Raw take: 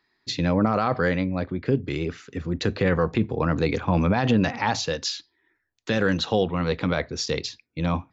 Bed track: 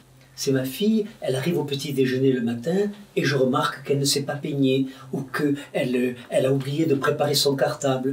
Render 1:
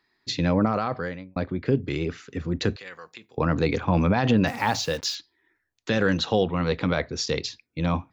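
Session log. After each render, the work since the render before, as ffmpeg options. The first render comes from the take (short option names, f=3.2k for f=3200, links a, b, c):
-filter_complex "[0:a]asettb=1/sr,asplit=3[a][b][c];[a]atrim=end=2.764[d];[b]atrim=start=2.76:end=3.38,asetpts=PTS-STARTPTS,afade=t=in:d=0.004:c=qsin,afade=t=out:st=0.616:d=0.004:c=qsin,aderivative[e];[c]atrim=start=3.376[f];[d][e]acrossfade=d=0.004:c1=hsin:c2=qsin[g];[g][f]acrossfade=d=0.004:c1=qsin:c2=hsin,asettb=1/sr,asplit=3[h][i][j];[h]atrim=end=4.474[k];[i]atrim=start=4.47:end=5.15,asetpts=PTS-STARTPTS,afade=t=in:d=0.004:c=qsin,afade=t=out:st=0.676:d=0.004:c=qsin,acrusher=bits=6:mix=0:aa=0.5[l];[j]atrim=start=5.146[m];[k][l]acrossfade=d=0.004:c1=hsin:c2=qsin[n];[n][m]acrossfade=d=0.004:c1=qsin:c2=hsin,asplit=2[o][p];[o]atrim=end=1.36,asetpts=PTS-STARTPTS,afade=t=out:st=0.57:d=0.79[q];[p]atrim=start=1.36,asetpts=PTS-STARTPTS,afade=t=in:d=0.004:c=hsin[r];[q][r]concat=n=2:v=0:a=1"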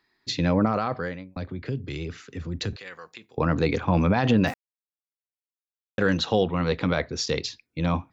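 -filter_complex "[0:a]asettb=1/sr,asplit=3[a][b][c];[a]atrim=end=1.364[d];[b]atrim=start=1.36:end=2.73,asetpts=PTS-STARTPTS,afade=t=in:d=0.004:c=qsin,afade=t=out:st=1.366:d=0.004:c=qsin,acrossover=split=130|3000[e][f][g];[f]acompressor=threshold=-38dB:ratio=2:attack=3.2:release=140:knee=2.83:detection=peak[h];[e][h][g]amix=inputs=3:normalize=0[i];[c]atrim=start=2.726[j];[d][i]acrossfade=d=0.004:c1=hsin:c2=qsin[k];[k][j]acrossfade=d=0.004:c1=qsin:c2=hsin,asplit=3[l][m][n];[l]atrim=end=4.54,asetpts=PTS-STARTPTS,afade=t=out:st=4.536:d=0.004:c=hsin[o];[m]atrim=start=4.54:end=5.98,asetpts=PTS-STARTPTS,volume=0[p];[n]atrim=start=5.98,asetpts=PTS-STARTPTS,afade=t=in:d=0.004:c=hsin[q];[o][p][q]concat=n=3:v=0:a=1"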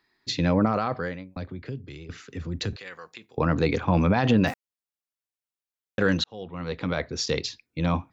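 -filter_complex "[0:a]asplit=3[a][b][c];[a]atrim=end=2.09,asetpts=PTS-STARTPTS,afade=t=out:st=1.22:d=0.87:silence=0.266073[d];[b]atrim=start=2.09:end=6.24,asetpts=PTS-STARTPTS,afade=t=in:d=0.004:c=hsin:silence=0.266073,afade=t=out:st=4.146:d=0.004:c=hsin[e];[c]atrim=start=6.24,asetpts=PTS-STARTPTS,afade=t=in:d=1[f];[d][e][f]concat=n=3:v=0:a=1"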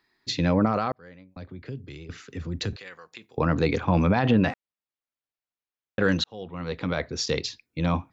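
-filter_complex "[0:a]asettb=1/sr,asplit=3[a][b][c];[a]atrim=end=4.194[d];[b]atrim=start=4.19:end=6.03,asetpts=PTS-STARTPTS,afade=t=in:d=0.004:c=qsin,afade=t=out:st=1.836:d=0.004:c=qsin,lowpass=3.6k[e];[c]atrim=start=6.026[f];[d][e]acrossfade=d=0.004:c1=hsin:c2=qsin[g];[g][f]acrossfade=d=0.004:c1=qsin:c2=hsin,asplit=3[h][i][j];[h]atrim=end=0.92,asetpts=PTS-STARTPTS,afade=t=out:st=0.916:d=0.004:c=hsin[k];[i]atrim=start=0.92:end=3.12,asetpts=PTS-STARTPTS,afade=t=in:d=0.94,afade=t=out:st=1.8:d=0.4:silence=0.473151[l];[j]atrim=start=3.12,asetpts=PTS-STARTPTS,afade=t=in:d=0.004:c=hsin:silence=0.473151[m];[k][l][m]concat=n=3:v=0:a=1"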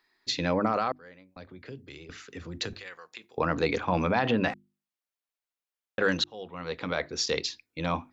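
-af "equalizer=f=100:w=0.48:g=-10.5,bandreject=f=50:t=h:w=6,bandreject=f=100:t=h:w=6,bandreject=f=150:t=h:w=6,bandreject=f=200:t=h:w=6,bandreject=f=250:t=h:w=6,bandreject=f=300:t=h:w=6,bandreject=f=350:t=h:w=6"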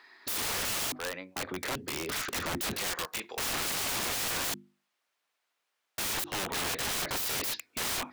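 -filter_complex "[0:a]asplit=2[a][b];[b]highpass=f=720:p=1,volume=24dB,asoftclip=type=tanh:threshold=-11.5dB[c];[a][c]amix=inputs=2:normalize=0,lowpass=f=2.4k:p=1,volume=-6dB,aeval=exprs='(mod(23.7*val(0)+1,2)-1)/23.7':c=same"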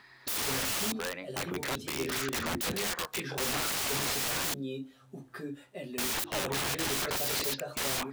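-filter_complex "[1:a]volume=-17.5dB[a];[0:a][a]amix=inputs=2:normalize=0"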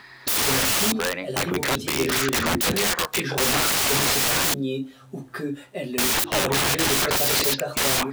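-af "volume=10.5dB"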